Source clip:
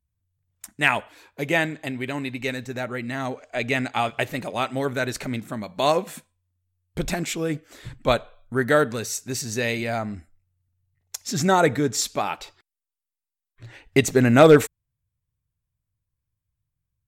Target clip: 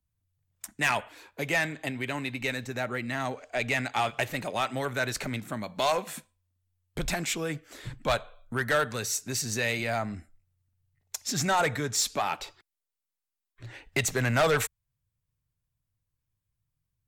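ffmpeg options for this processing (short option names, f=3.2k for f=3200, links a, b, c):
-filter_complex "[0:a]equalizer=f=70:w=2.2:g=-5.5,acrossover=split=130|610|3000[a][b][c][d];[b]acompressor=threshold=-35dB:ratio=6[e];[a][e][c][d]amix=inputs=4:normalize=0,asoftclip=type=tanh:threshold=-18.5dB"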